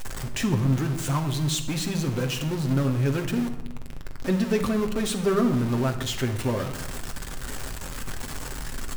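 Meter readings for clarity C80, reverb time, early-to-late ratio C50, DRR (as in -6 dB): 12.0 dB, 1.0 s, 9.5 dB, 4.0 dB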